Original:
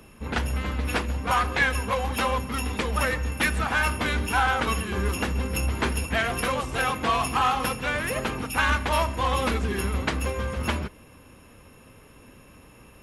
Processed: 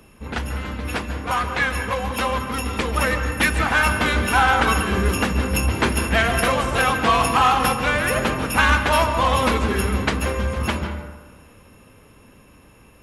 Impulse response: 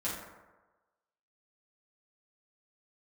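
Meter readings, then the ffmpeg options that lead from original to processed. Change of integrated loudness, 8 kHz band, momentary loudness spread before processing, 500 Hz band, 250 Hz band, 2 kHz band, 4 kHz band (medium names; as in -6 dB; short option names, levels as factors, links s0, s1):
+5.5 dB, +5.5 dB, 6 LU, +6.0 dB, +6.0 dB, +5.5 dB, +5.5 dB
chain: -filter_complex "[0:a]dynaudnorm=f=330:g=17:m=2.11,asplit=2[s0][s1];[1:a]atrim=start_sample=2205,lowpass=5400,adelay=141[s2];[s1][s2]afir=irnorm=-1:irlink=0,volume=0.251[s3];[s0][s3]amix=inputs=2:normalize=0"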